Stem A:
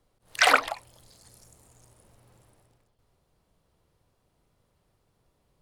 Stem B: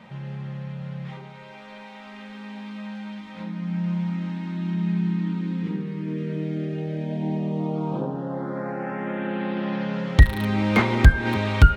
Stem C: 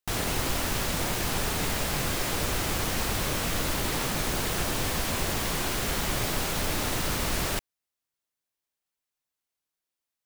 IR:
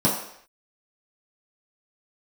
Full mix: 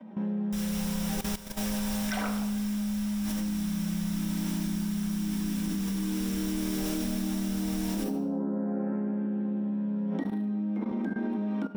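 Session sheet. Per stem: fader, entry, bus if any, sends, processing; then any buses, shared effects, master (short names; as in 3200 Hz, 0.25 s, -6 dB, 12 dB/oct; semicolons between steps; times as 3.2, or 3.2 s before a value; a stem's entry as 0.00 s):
-12.5 dB, 1.70 s, send -11 dB, dry
-3.5 dB, 0.00 s, send -13.5 dB, steep high-pass 190 Hz 96 dB/oct; tilt shelf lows +9 dB; compressor 8:1, threshold -30 dBFS, peak gain reduction 21 dB
-5.5 dB, 0.45 s, send -12 dB, passive tone stack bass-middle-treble 10-0-10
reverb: on, pre-delay 3 ms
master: level quantiser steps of 15 dB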